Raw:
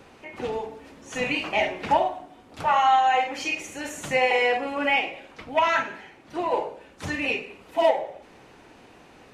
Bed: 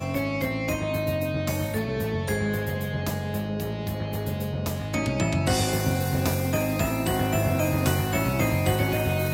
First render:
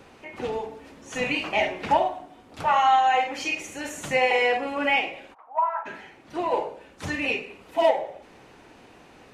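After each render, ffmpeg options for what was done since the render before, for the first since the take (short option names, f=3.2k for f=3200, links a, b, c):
-filter_complex "[0:a]asplit=3[a][b][c];[a]afade=t=out:st=5.33:d=0.02[d];[b]asuperpass=centerf=920:order=4:qfactor=2.1,afade=t=in:st=5.33:d=0.02,afade=t=out:st=5.85:d=0.02[e];[c]afade=t=in:st=5.85:d=0.02[f];[d][e][f]amix=inputs=3:normalize=0"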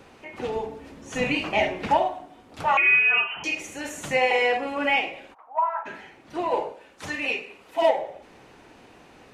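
-filter_complex "[0:a]asettb=1/sr,asplit=3[a][b][c];[a]atrim=end=0.564[d];[b]atrim=start=0.56:end=1.87,asetpts=PTS-STARTPTS,afade=t=in:d=0.004:c=qsin,afade=t=out:st=1.306:d=0.004:c=qsin,lowshelf=f=320:g=6.5[e];[c]atrim=start=1.866[f];[d][e]acrossfade=d=0.004:c1=hsin:c2=qsin[g];[g][f]acrossfade=d=0.004:c1=qsin:c2=hsin,asettb=1/sr,asplit=3[h][i][j];[h]atrim=end=2.774[k];[i]atrim=start=2.77:end=3.44,asetpts=PTS-STARTPTS,afade=t=in:d=0.004:c=qsin,afade=t=out:st=0.666:d=0.004:c=qsin,lowpass=f=2.8k:t=q:w=0.5098,lowpass=f=2.8k:t=q:w=0.6013,lowpass=f=2.8k:t=q:w=0.9,lowpass=f=2.8k:t=q:w=2.563,afreqshift=-3300[l];[j]atrim=start=3.436[m];[k][l]acrossfade=d=0.004:c1=hsin:c2=qsin[n];[n][m]acrossfade=d=0.004:c1=qsin:c2=hsin,asettb=1/sr,asplit=3[o][p][q];[o]atrim=end=6.724[r];[p]atrim=start=6.72:end=7.82,asetpts=PTS-STARTPTS,afade=t=in:d=0.004:c=qsin,afade=t=out:st=1.096:d=0.004:c=qsin,lowshelf=f=280:g=-10[s];[q]atrim=start=7.816[t];[r][s]acrossfade=d=0.004:c1=hsin:c2=qsin[u];[u][t]acrossfade=d=0.004:c1=qsin:c2=hsin"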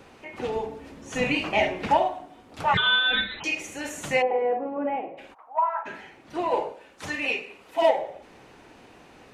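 -filter_complex "[0:a]asplit=3[a][b][c];[a]afade=t=out:st=2.73:d=0.02[d];[b]aeval=exprs='val(0)*sin(2*PI*990*n/s)':c=same,afade=t=in:st=2.73:d=0.02,afade=t=out:st=3.39:d=0.02[e];[c]afade=t=in:st=3.39:d=0.02[f];[d][e][f]amix=inputs=3:normalize=0,asplit=3[g][h][i];[g]afade=t=out:st=4.21:d=0.02[j];[h]asuperpass=centerf=340:order=4:qfactor=0.51,afade=t=in:st=4.21:d=0.02,afade=t=out:st=5.17:d=0.02[k];[i]afade=t=in:st=5.17:d=0.02[l];[j][k][l]amix=inputs=3:normalize=0"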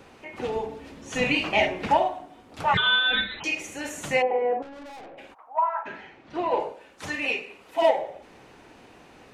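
-filter_complex "[0:a]asettb=1/sr,asplit=3[a][b][c];[a]atrim=end=0.694[d];[b]atrim=start=0.69:end=1.66,asetpts=PTS-STARTPTS,afade=t=in:d=0.004:c=qsin,afade=t=out:st=0.966:d=0.004:c=qsin,equalizer=f=3.6k:w=0.9:g=3.5[e];[c]atrim=start=1.656[f];[d][e]acrossfade=d=0.004:c1=hsin:c2=qsin[g];[g][f]acrossfade=d=0.004:c1=qsin:c2=hsin,asettb=1/sr,asplit=3[h][i][j];[h]atrim=end=4.624[k];[i]atrim=start=4.62:end=5.18,asetpts=PTS-STARTPTS,afade=t=in:d=0.004:c=qsin,afade=t=out:st=0.556:d=0.004:c=qsin,aeval=exprs='(tanh(112*val(0)+0.25)-tanh(0.25))/112':c=same[l];[j]atrim=start=5.176[m];[k][l]acrossfade=d=0.004:c1=hsin:c2=qsin[n];[n][m]acrossfade=d=0.004:c1=qsin:c2=hsin,asettb=1/sr,asplit=3[o][p][q];[o]atrim=end=5.854[r];[p]atrim=start=5.85:end=6.6,asetpts=PTS-STARTPTS,afade=t=in:d=0.004:c=qsin,afade=t=out:st=0.746:d=0.004:c=qsin,lowpass=4.7k[s];[q]atrim=start=6.596[t];[r][s]acrossfade=d=0.004:c1=hsin:c2=qsin[u];[u][t]acrossfade=d=0.004:c1=qsin:c2=hsin"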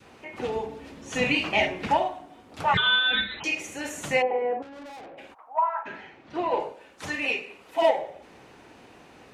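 -af "highpass=45,adynamicequalizer=threshold=0.02:dfrequency=620:dqfactor=0.8:tfrequency=620:tqfactor=0.8:attack=5:release=100:ratio=0.375:range=2.5:mode=cutabove:tftype=bell"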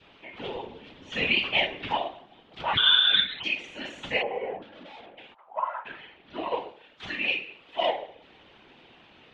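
-af "lowpass=f=3.3k:t=q:w=4,afftfilt=real='hypot(re,im)*cos(2*PI*random(0))':imag='hypot(re,im)*sin(2*PI*random(1))':win_size=512:overlap=0.75"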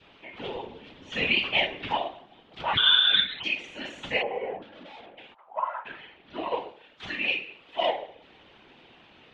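-af anull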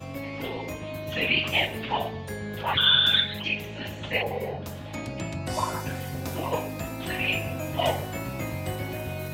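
-filter_complex "[1:a]volume=-8.5dB[a];[0:a][a]amix=inputs=2:normalize=0"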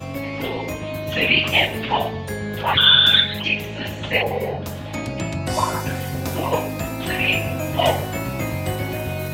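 -af "volume=7dB,alimiter=limit=-1dB:level=0:latency=1"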